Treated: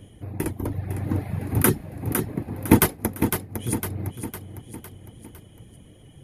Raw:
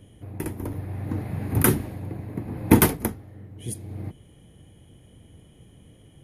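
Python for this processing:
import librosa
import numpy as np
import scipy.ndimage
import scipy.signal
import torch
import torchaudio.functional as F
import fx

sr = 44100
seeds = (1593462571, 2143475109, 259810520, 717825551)

p1 = fx.dereverb_blind(x, sr, rt60_s=0.71)
p2 = fx.echo_feedback(p1, sr, ms=506, feedback_pct=49, wet_db=-10.0)
p3 = fx.rider(p2, sr, range_db=4, speed_s=0.5)
p4 = p2 + (p3 * 10.0 ** (2.5 / 20.0))
y = p4 * 10.0 ** (-5.5 / 20.0)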